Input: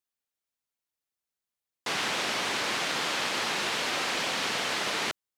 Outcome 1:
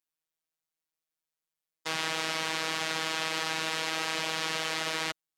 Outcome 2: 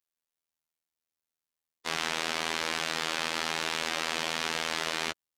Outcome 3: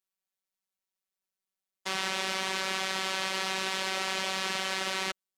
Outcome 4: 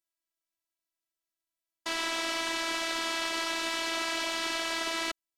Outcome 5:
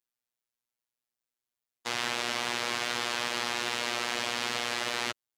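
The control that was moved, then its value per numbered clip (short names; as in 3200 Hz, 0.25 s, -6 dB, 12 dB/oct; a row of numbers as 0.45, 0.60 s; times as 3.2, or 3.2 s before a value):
robotiser, frequency: 160, 81, 190, 330, 120 Hz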